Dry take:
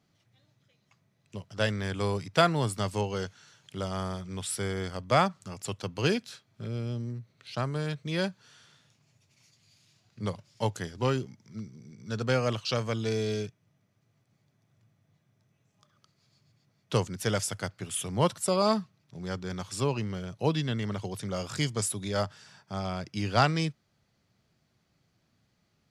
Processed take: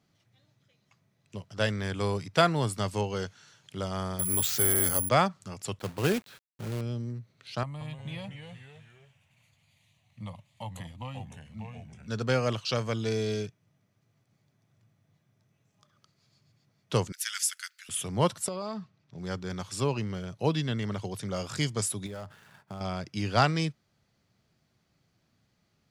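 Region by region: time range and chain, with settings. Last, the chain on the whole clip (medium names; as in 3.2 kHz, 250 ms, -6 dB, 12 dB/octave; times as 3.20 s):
4.19–5.09 s: comb 7.4 ms, depth 50% + careless resampling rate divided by 4×, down filtered, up zero stuff + level flattener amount 50%
5.79–6.81 s: low-pass 2.4 kHz + companded quantiser 4-bit
7.63–12.08 s: compression 3:1, threshold -33 dBFS + static phaser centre 1.5 kHz, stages 6 + ever faster or slower copies 178 ms, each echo -2 st, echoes 3, each echo -6 dB
17.12–17.89 s: steep high-pass 1.5 kHz + treble shelf 8.9 kHz +11.5 dB
18.48–19.18 s: compression 4:1, threshold -32 dBFS + distance through air 70 m
22.06–22.81 s: median filter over 9 samples + waveshaping leveller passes 1 + compression 12:1, threshold -36 dBFS
whole clip: none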